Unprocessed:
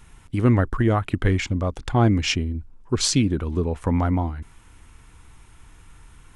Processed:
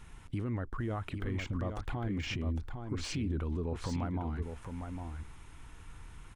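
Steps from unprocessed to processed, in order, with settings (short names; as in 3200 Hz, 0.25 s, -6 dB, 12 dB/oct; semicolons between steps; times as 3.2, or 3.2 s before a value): de-esser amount 85%; high shelf 7100 Hz -6.5 dB; compressor, threshold -25 dBFS, peak gain reduction 12.5 dB; limiter -25.5 dBFS, peak gain reduction 10 dB; on a send: echo 0.806 s -6.5 dB; on the sum: gain -2.5 dB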